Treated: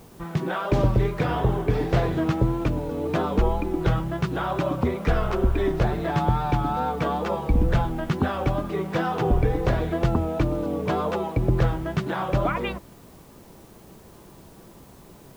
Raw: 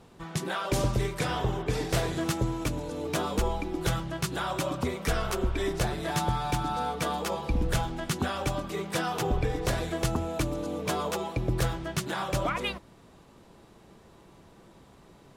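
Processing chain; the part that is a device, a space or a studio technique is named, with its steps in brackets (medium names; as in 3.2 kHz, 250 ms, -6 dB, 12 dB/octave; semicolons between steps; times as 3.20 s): cassette deck with a dirty head (tape spacing loss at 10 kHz 32 dB; wow and flutter; white noise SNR 33 dB); trim +7.5 dB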